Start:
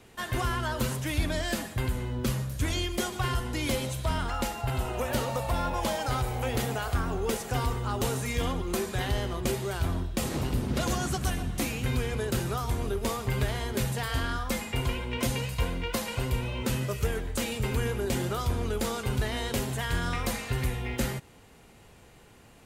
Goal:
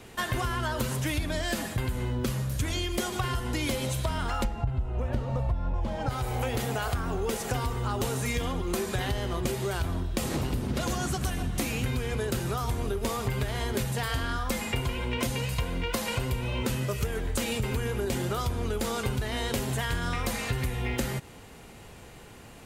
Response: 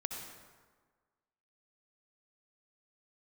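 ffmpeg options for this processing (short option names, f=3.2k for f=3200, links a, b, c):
-filter_complex "[0:a]asplit=3[a][b][c];[a]afade=t=out:st=4.43:d=0.02[d];[b]aemphasis=mode=reproduction:type=riaa,afade=t=in:st=4.43:d=0.02,afade=t=out:st=6.08:d=0.02[e];[c]afade=t=in:st=6.08:d=0.02[f];[d][e][f]amix=inputs=3:normalize=0,acompressor=threshold=-32dB:ratio=10,volume=6.5dB"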